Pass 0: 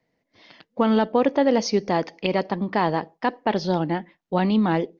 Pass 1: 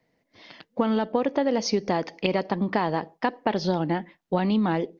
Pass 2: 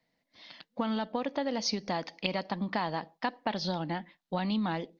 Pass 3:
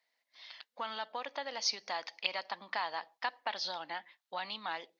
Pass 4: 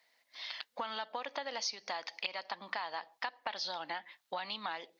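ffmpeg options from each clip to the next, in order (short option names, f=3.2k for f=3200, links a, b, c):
-af "acompressor=threshold=-22dB:ratio=6,volume=2.5dB"
-af "equalizer=f=100:t=o:w=0.67:g=-9,equalizer=f=400:t=o:w=0.67:g=-9,equalizer=f=4k:t=o:w=0.67:g=7,volume=-5.5dB"
-af "highpass=920"
-af "acompressor=threshold=-46dB:ratio=4,volume=9dB"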